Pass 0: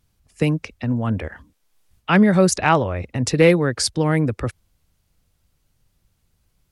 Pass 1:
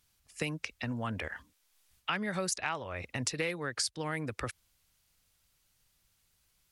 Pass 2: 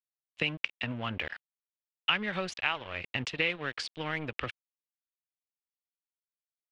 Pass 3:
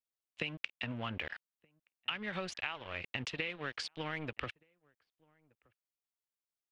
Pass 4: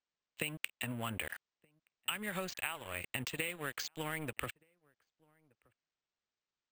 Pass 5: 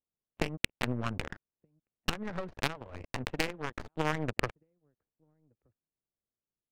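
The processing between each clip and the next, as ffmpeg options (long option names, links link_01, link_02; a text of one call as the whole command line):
ffmpeg -i in.wav -af "tiltshelf=frequency=810:gain=-7.5,acompressor=threshold=-25dB:ratio=6,volume=-6dB" out.wav
ffmpeg -i in.wav -af "aeval=exprs='sgn(val(0))*max(abs(val(0))-0.00562,0)':channel_layout=same,lowpass=frequency=3000:width_type=q:width=3.3,volume=1.5dB" out.wav
ffmpeg -i in.wav -filter_complex "[0:a]acompressor=threshold=-31dB:ratio=6,asplit=2[link_01][link_02];[link_02]adelay=1224,volume=-29dB,highshelf=frequency=4000:gain=-27.6[link_03];[link_01][link_03]amix=inputs=2:normalize=0,volume=-2.5dB" out.wav
ffmpeg -i in.wav -af "acrusher=samples=4:mix=1:aa=0.000001" out.wav
ffmpeg -i in.wav -af "aeval=exprs='0.126*(cos(1*acos(clip(val(0)/0.126,-1,1)))-cos(1*PI/2))+0.0141*(cos(3*acos(clip(val(0)/0.126,-1,1)))-cos(3*PI/2))+0.0398*(cos(4*acos(clip(val(0)/0.126,-1,1)))-cos(4*PI/2))':channel_layout=same,adynamicsmooth=sensitivity=4.5:basefreq=500,volume=8.5dB" out.wav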